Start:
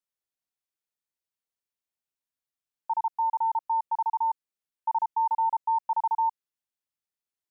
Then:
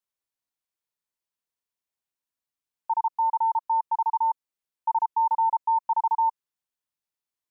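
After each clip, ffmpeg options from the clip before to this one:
-af "equalizer=f=990:t=o:w=0.36:g=4"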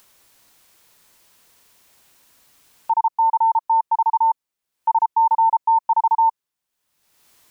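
-af "acompressor=mode=upward:threshold=-40dB:ratio=2.5,volume=6.5dB"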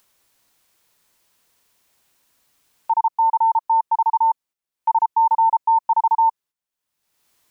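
-af "agate=range=-8dB:threshold=-46dB:ratio=16:detection=peak"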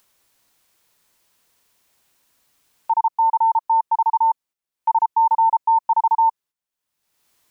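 -af anull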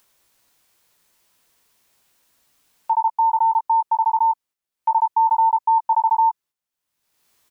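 -filter_complex "[0:a]asplit=2[a][b];[b]adelay=17,volume=-8dB[c];[a][c]amix=inputs=2:normalize=0"

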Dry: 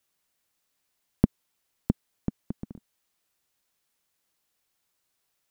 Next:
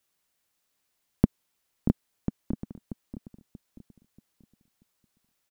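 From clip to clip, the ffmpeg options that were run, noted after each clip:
-filter_complex "[0:a]asplit=2[a][b];[b]adelay=634,lowpass=f=960:p=1,volume=-8.5dB,asplit=2[c][d];[d]adelay=634,lowpass=f=960:p=1,volume=0.35,asplit=2[e][f];[f]adelay=634,lowpass=f=960:p=1,volume=0.35,asplit=2[g][h];[h]adelay=634,lowpass=f=960:p=1,volume=0.35[i];[a][c][e][g][i]amix=inputs=5:normalize=0"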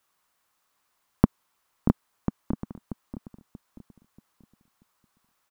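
-af "equalizer=f=1.1k:t=o:w=1.1:g=11.5,volume=1.5dB"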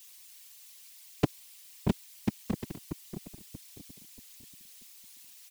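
-af "aexciter=amount=4.8:drive=9.4:freq=2k,afftfilt=real='hypot(re,im)*cos(2*PI*random(0))':imag='hypot(re,im)*sin(2*PI*random(1))':win_size=512:overlap=0.75,asoftclip=type=tanh:threshold=-21dB,volume=5.5dB"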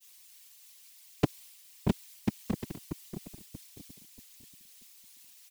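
-af "agate=range=-33dB:threshold=-49dB:ratio=3:detection=peak"

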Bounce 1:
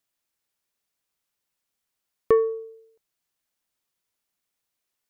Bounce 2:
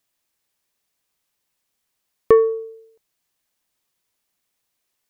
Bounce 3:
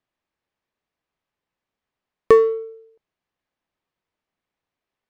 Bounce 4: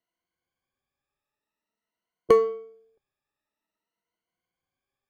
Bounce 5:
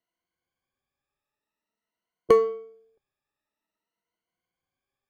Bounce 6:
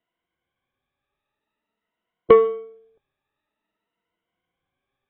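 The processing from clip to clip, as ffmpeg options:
-af "bandreject=f=1.4k:w=17,volume=6dB"
-af "highshelf=f=2k:g=9.5,adynamicsmooth=sensitivity=3.5:basefreq=1.5k"
-af "afftfilt=real='re*pow(10,17/40*sin(2*PI*(1.9*log(max(b,1)*sr/1024/100)/log(2)-(0.49)*(pts-256)/sr)))':imag='im*pow(10,17/40*sin(2*PI*(1.9*log(max(b,1)*sr/1024/100)/log(2)-(0.49)*(pts-256)/sr)))':win_size=1024:overlap=0.75,tremolo=f=240:d=0.182,volume=-5.5dB"
-af anull
-af "volume=5.5dB" -ar 24000 -c:a aac -b:a 16k

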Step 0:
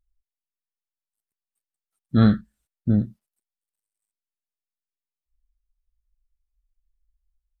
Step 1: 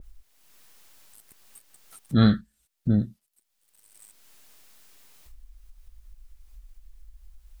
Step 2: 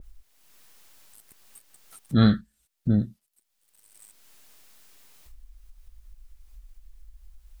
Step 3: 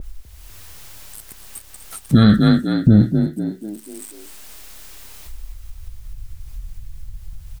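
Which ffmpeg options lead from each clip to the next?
-af "acompressor=mode=upward:threshold=-22dB:ratio=2.5,adynamicequalizer=threshold=0.00282:dfrequency=2100:dqfactor=0.7:tfrequency=2100:tqfactor=0.7:attack=5:release=100:ratio=0.375:range=4:mode=boostabove:tftype=highshelf,volume=-2dB"
-af anull
-filter_complex "[0:a]asplit=2[a][b];[b]asplit=5[c][d][e][f][g];[c]adelay=248,afreqshift=34,volume=-11dB[h];[d]adelay=496,afreqshift=68,volume=-17.7dB[i];[e]adelay=744,afreqshift=102,volume=-24.5dB[j];[f]adelay=992,afreqshift=136,volume=-31.2dB[k];[g]adelay=1240,afreqshift=170,volume=-38dB[l];[h][i][j][k][l]amix=inputs=5:normalize=0[m];[a][m]amix=inputs=2:normalize=0,alimiter=level_in=16dB:limit=-1dB:release=50:level=0:latency=1,volume=-1dB"

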